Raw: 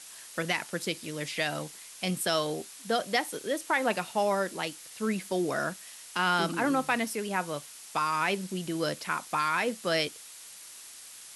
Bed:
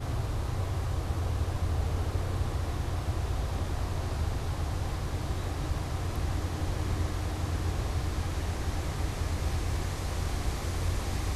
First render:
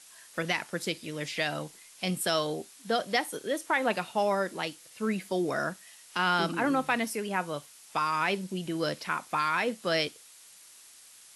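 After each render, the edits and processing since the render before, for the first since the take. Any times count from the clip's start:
noise reduction from a noise print 6 dB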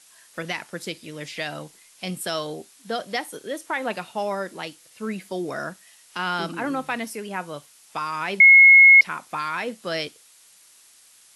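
0:08.40–0:09.01: beep over 2,170 Hz −7 dBFS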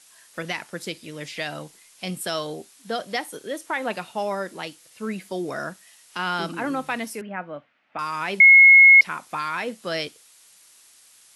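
0:07.21–0:07.99: loudspeaker in its box 120–2,300 Hz, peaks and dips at 150 Hz −4 dB, 250 Hz +5 dB, 410 Hz −9 dB, 620 Hz +3 dB, 1,000 Hz −7 dB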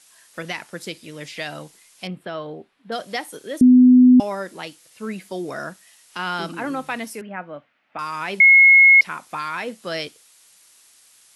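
0:02.07–0:02.92: high-frequency loss of the air 480 metres
0:03.61–0:04.20: beep over 251 Hz −7 dBFS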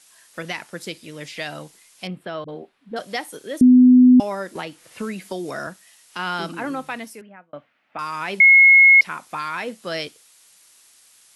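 0:02.44–0:02.99: all-pass dispersion highs, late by 44 ms, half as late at 300 Hz
0:04.55–0:05.67: multiband upward and downward compressor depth 100%
0:06.40–0:07.53: fade out equal-power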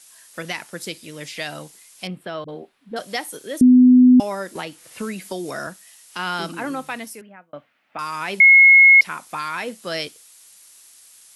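high-shelf EQ 6,100 Hz +7.5 dB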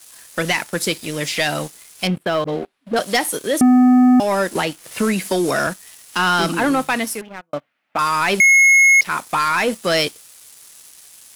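downward compressor 2 to 1, threshold −19 dBFS, peak gain reduction 6 dB
leveller curve on the samples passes 3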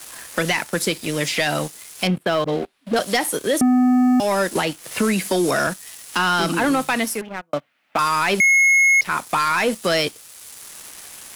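brickwall limiter −12 dBFS, peak gain reduction 3.5 dB
multiband upward and downward compressor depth 40%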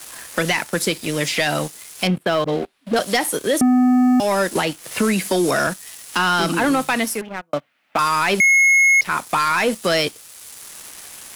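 level +1 dB

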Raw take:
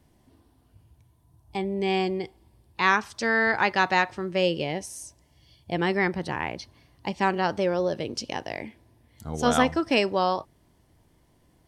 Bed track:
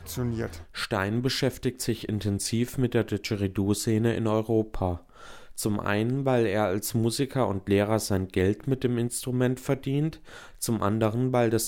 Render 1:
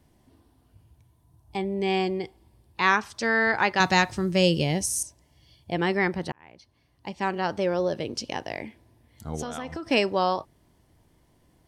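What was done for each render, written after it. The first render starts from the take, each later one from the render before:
0:03.80–0:05.03: bass and treble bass +11 dB, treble +13 dB
0:06.32–0:07.76: fade in
0:09.42–0:09.86: downward compressor 20 to 1, threshold −29 dBFS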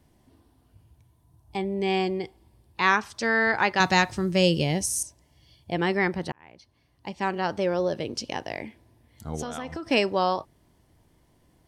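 no processing that can be heard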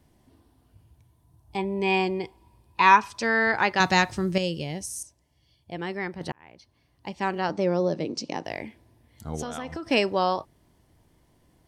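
0:01.58–0:03.23: hollow resonant body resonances 980/2,500 Hz, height 14 dB
0:04.38–0:06.21: clip gain −7.5 dB
0:07.49–0:08.45: loudspeaker in its box 160–7,600 Hz, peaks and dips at 170 Hz +8 dB, 300 Hz +6 dB, 1,600 Hz −6 dB, 3,100 Hz −8 dB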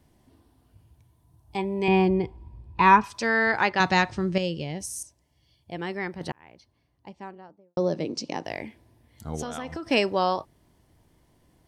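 0:01.88–0:03.04: RIAA equalisation playback
0:03.69–0:04.80: high-frequency loss of the air 90 metres
0:06.28–0:07.77: fade out and dull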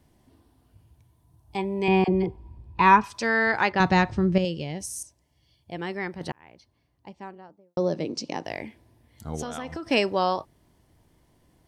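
0:02.04–0:02.59: all-pass dispersion lows, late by 43 ms, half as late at 720 Hz
0:03.72–0:04.45: spectral tilt −2 dB per octave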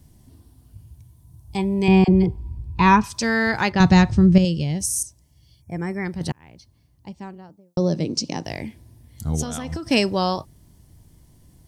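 0:05.61–0:06.06: gain on a spectral selection 2,500–5,300 Hz −21 dB
bass and treble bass +13 dB, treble +12 dB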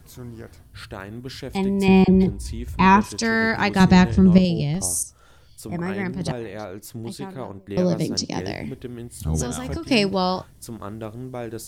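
mix in bed track −8.5 dB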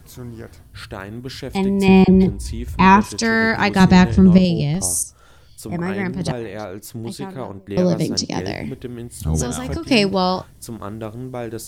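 level +3.5 dB
brickwall limiter −1 dBFS, peak gain reduction 2 dB

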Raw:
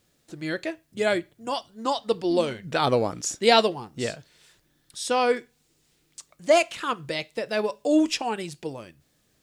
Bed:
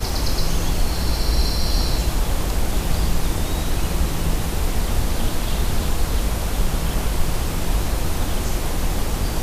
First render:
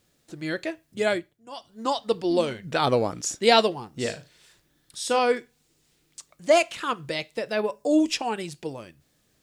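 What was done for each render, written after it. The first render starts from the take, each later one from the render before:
0:01.07–0:01.81: duck −14 dB, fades 0.31 s
0:04.01–0:05.19: flutter between parallel walls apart 6.5 metres, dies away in 0.23 s
0:07.52–0:08.09: parametric band 8,800 Hz → 1,200 Hz −13.5 dB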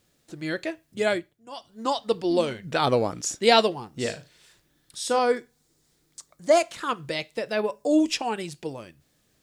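0:05.10–0:06.89: parametric band 2,700 Hz −8.5 dB 0.57 octaves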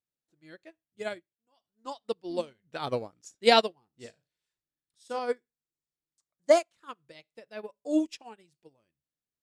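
expander for the loud parts 2.5 to 1, over −35 dBFS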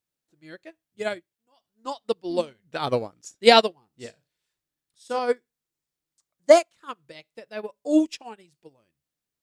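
level +6.5 dB
brickwall limiter −2 dBFS, peak gain reduction 2.5 dB

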